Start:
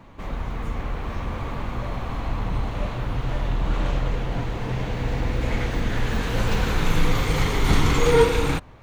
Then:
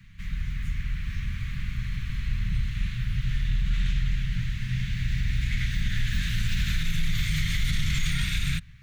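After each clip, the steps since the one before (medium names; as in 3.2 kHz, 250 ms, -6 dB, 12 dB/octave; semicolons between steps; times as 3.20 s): Chebyshev band-stop 170–1800 Hz, order 3; dynamic bell 3.6 kHz, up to +5 dB, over -53 dBFS, Q 6.7; peak limiter -16.5 dBFS, peak gain reduction 8.5 dB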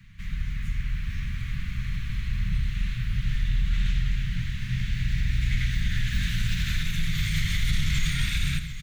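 delay 82 ms -10.5 dB; bit-crushed delay 737 ms, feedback 55%, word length 9-bit, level -13.5 dB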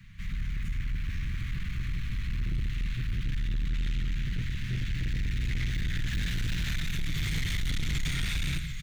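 saturation -25 dBFS, distortion -11 dB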